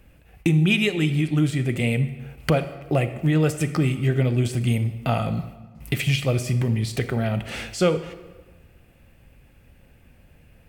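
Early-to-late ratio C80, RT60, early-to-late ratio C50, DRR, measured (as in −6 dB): 13.5 dB, 1.3 s, 12.0 dB, 11.0 dB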